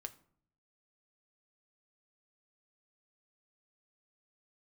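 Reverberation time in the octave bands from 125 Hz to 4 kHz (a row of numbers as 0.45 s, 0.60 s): 0.95 s, 0.80 s, 0.60 s, 0.55 s, 0.40 s, 0.35 s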